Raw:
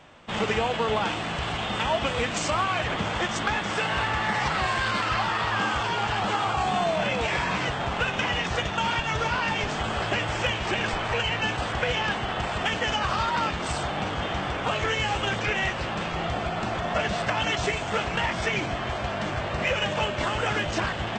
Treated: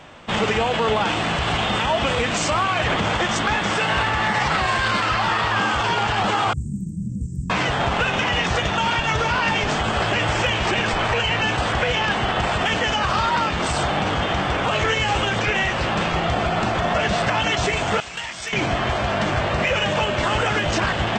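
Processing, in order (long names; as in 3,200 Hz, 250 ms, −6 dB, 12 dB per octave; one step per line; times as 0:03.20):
0:06.53–0:07.50: inverse Chebyshev band-stop filter 630–3,800 Hz, stop band 60 dB
0:18.00–0:18.53: first-order pre-emphasis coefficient 0.9
brickwall limiter −19.5 dBFS, peak gain reduction 5 dB
level +8 dB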